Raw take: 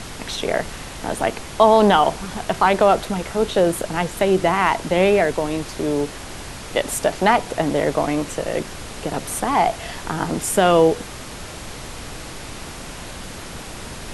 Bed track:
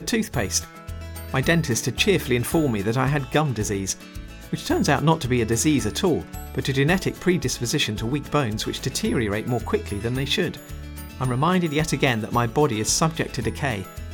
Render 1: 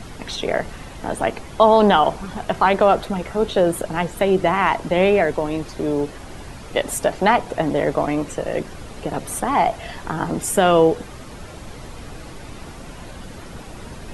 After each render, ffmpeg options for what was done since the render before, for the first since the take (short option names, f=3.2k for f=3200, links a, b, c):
-af "afftdn=nr=9:nf=-35"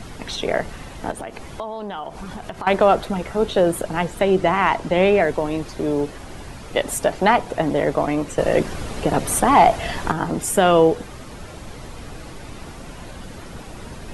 -filter_complex "[0:a]asettb=1/sr,asplit=3[a][b][c];[a]atrim=end=1.114[d];[b]atrim=start=1.11:end=2.67,asetpts=PTS-STARTPTS,afade=t=in:d=0.004:c=qsin,afade=t=out:st=1.556:d=0.004:c=qsin,acompressor=threshold=-28dB:ratio=5:attack=3.2:release=140:knee=1:detection=peak[e];[c]atrim=start=2.666[f];[d][e]acrossfade=d=0.004:c1=hsin:c2=qsin[g];[g][f]acrossfade=d=0.004:c1=qsin:c2=hsin,asettb=1/sr,asplit=3[h][i][j];[h]atrim=end=4.154[k];[i]atrim=start=4.15:end=5.2,asetpts=PTS-STARTPTS,afade=t=in:d=0.004:c=qsin,afade=t=out:st=1.046:d=0.004:c=qsin,lowpass=9.9k[l];[j]atrim=start=5.196[m];[k][l]acrossfade=d=0.004:c1=hsin:c2=qsin[n];[n][m]acrossfade=d=0.004:c1=qsin:c2=hsin,asettb=1/sr,asplit=3[o][p][q];[o]atrim=end=8.384[r];[p]atrim=start=8.38:end=10.12,asetpts=PTS-STARTPTS,afade=t=in:d=0.004:c=qsin,afade=t=out:st=1.736:d=0.004:c=qsin,acontrast=62[s];[q]atrim=start=10.116[t];[r][s]acrossfade=d=0.004:c1=hsin:c2=qsin[u];[u][t]acrossfade=d=0.004:c1=qsin:c2=hsin"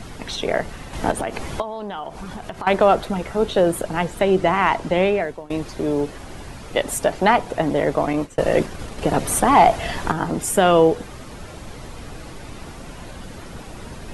-filter_complex "[0:a]asettb=1/sr,asplit=3[a][b][c];[a]atrim=end=0.934[d];[b]atrim=start=0.93:end=1.62,asetpts=PTS-STARTPTS,afade=t=in:d=0.004:c=qsin,afade=t=out:st=0.686:d=0.004:c=qsin,acontrast=68[e];[c]atrim=start=1.616[f];[d][e]acrossfade=d=0.004:c1=hsin:c2=qsin[g];[g][f]acrossfade=d=0.004:c1=qsin:c2=hsin,asettb=1/sr,asplit=3[h][i][j];[h]atrim=end=8.134[k];[i]atrim=start=8.13:end=9.02,asetpts=PTS-STARTPTS,afade=t=in:d=0.004:c=qsin,afade=t=out:st=0.886:d=0.004:c=qsin,agate=range=-33dB:threshold=-25dB:ratio=3:release=100:detection=peak[l];[j]atrim=start=9.016[m];[k][l]acrossfade=d=0.004:c1=hsin:c2=qsin[n];[n][m]acrossfade=d=0.004:c1=qsin:c2=hsin,asplit=2[o][p];[o]atrim=end=5.5,asetpts=PTS-STARTPTS,afade=t=out:st=4.91:d=0.59:silence=0.0794328[q];[p]atrim=start=5.5,asetpts=PTS-STARTPTS,afade=t=in:d=0.004:c=hsin:silence=0.0794328[r];[q][r]concat=n=2:v=0:a=1"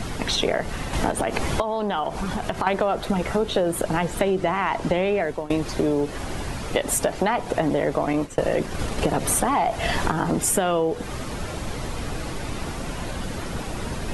-filter_complex "[0:a]asplit=2[a][b];[b]alimiter=limit=-13dB:level=0:latency=1:release=31,volume=0dB[c];[a][c]amix=inputs=2:normalize=0,acompressor=threshold=-18dB:ratio=10"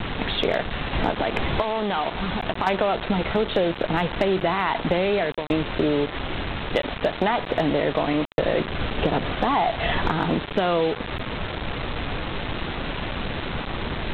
-af "aresample=8000,acrusher=bits=4:mix=0:aa=0.000001,aresample=44100,asoftclip=type=hard:threshold=-10dB"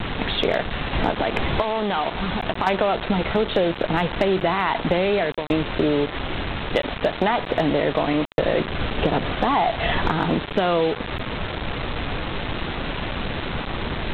-af "volume=1.5dB"